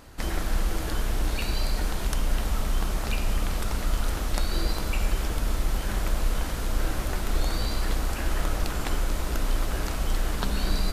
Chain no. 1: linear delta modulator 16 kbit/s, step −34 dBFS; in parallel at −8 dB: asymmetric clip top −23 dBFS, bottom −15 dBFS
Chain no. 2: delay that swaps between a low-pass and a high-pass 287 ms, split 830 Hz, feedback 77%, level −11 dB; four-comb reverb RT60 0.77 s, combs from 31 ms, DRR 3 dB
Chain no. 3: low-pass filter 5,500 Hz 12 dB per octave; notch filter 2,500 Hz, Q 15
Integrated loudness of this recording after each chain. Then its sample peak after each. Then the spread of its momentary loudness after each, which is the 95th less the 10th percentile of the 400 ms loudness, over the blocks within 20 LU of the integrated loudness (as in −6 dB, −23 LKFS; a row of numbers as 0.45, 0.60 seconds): −28.0, −28.5, −30.5 LKFS; −11.0, −9.0, −10.5 dBFS; 1, 1, 1 LU